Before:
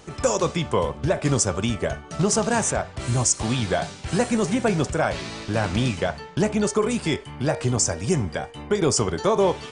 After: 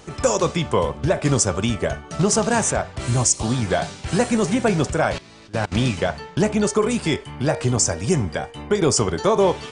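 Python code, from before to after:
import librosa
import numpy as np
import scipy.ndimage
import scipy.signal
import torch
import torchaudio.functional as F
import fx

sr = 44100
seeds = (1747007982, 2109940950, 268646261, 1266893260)

y = fx.peak_eq(x, sr, hz=fx.line((3.27, 1100.0), (3.69, 4200.0)), db=-12.5, octaves=0.57, at=(3.27, 3.69), fade=0.02)
y = fx.level_steps(y, sr, step_db=24, at=(5.18, 5.72))
y = F.gain(torch.from_numpy(y), 2.5).numpy()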